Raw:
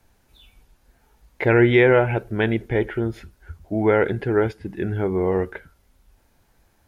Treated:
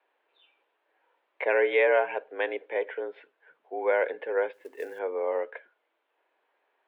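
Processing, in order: mistuned SSB +74 Hz 340–3200 Hz; 4.53–4.99 s: companded quantiser 6-bit; trim -6 dB

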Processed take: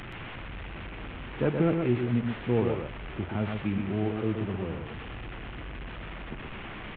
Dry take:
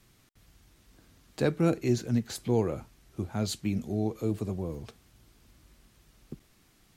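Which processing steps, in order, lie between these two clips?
one-bit delta coder 16 kbps, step -34.5 dBFS; on a send: delay 124 ms -5 dB

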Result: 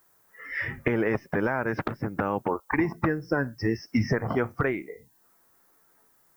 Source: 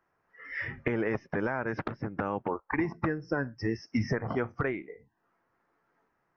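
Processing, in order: added noise violet -69 dBFS; trim +4.5 dB

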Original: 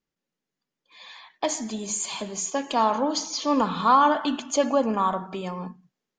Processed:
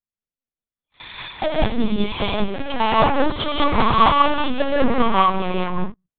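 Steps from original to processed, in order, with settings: waveshaping leveller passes 5; tremolo saw down 5 Hz, depth 85%; gated-style reverb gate 220 ms rising, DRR -5.5 dB; LPC vocoder at 8 kHz pitch kept; trim -5.5 dB

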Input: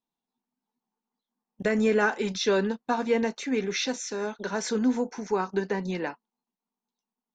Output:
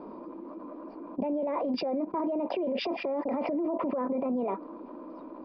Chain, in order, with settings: peaking EQ 380 Hz +14.5 dB 1.8 oct; resampled via 8 kHz; FFT filter 330 Hz 0 dB, 600 Hz +3 dB, 900 Hz -8 dB, 1.4 kHz -10 dB, 2.9 kHz -19 dB; speed mistake 33 rpm record played at 45 rpm; peak limiter -30.5 dBFS, peak gain reduction 30 dB; small resonant body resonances 200/990/2400 Hz, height 13 dB, ringing for 30 ms; level flattener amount 70%

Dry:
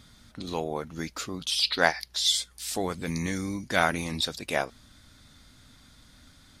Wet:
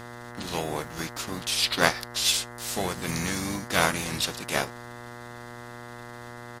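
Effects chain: formants flattened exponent 0.6; harmony voices -5 st -7 dB; mains buzz 120 Hz, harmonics 17, -42 dBFS -2 dB/octave

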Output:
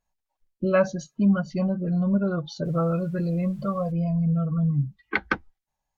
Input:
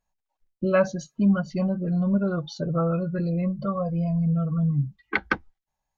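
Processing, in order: 2.64–3.91 s: added noise pink -62 dBFS; Vorbis 96 kbps 48 kHz

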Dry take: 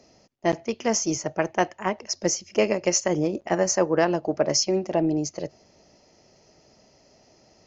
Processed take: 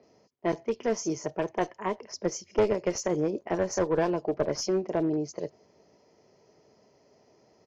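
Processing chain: high-pass 91 Hz 12 dB/octave; band-stop 2.7 kHz, Q 12; small resonant body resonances 430/1000/2700 Hz, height 8 dB, ringing for 35 ms; one-sided clip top -18 dBFS; distance through air 78 m; bands offset in time lows, highs 30 ms, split 4 kHz; trim -5 dB

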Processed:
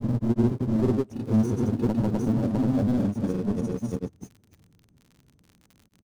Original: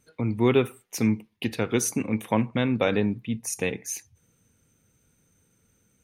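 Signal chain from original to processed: square wave that keeps the level; treble shelf 5.8 kHz -6 dB; band-stop 490 Hz, Q 13; on a send: multi-tap echo 81/112/161 ms -9.5/-7.5/-4 dB; on the sum: saturation -12 dBFS, distortion -16 dB; FFT filter 300 Hz 0 dB, 2.3 kHz -22 dB, 5.3 kHz -18 dB; crackle 46 per s -40 dBFS; granulator, spray 453 ms

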